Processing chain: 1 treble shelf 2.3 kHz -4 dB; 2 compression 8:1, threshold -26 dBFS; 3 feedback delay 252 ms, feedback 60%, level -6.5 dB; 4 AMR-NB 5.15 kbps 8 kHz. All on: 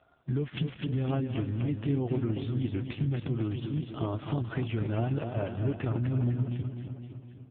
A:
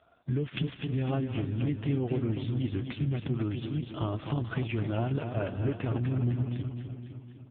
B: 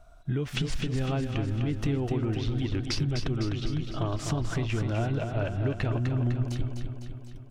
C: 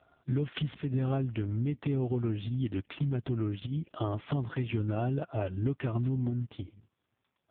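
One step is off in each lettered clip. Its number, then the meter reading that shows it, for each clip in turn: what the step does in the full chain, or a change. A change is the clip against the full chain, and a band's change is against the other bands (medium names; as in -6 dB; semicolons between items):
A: 1, 2 kHz band +2.0 dB; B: 4, 2 kHz band +4.5 dB; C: 3, loudness change -1.0 LU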